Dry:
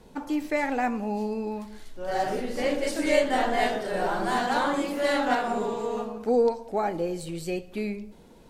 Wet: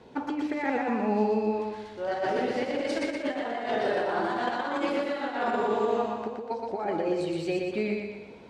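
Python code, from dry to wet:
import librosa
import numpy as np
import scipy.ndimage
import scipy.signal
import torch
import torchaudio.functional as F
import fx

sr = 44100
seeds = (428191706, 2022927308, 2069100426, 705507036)

p1 = fx.peak_eq(x, sr, hz=180.0, db=-8.0, octaves=0.42)
p2 = fx.over_compress(p1, sr, threshold_db=-29.0, ratio=-0.5)
p3 = fx.bandpass_edges(p2, sr, low_hz=100.0, high_hz=4000.0)
y = p3 + fx.echo_feedback(p3, sr, ms=120, feedback_pct=50, wet_db=-3.5, dry=0)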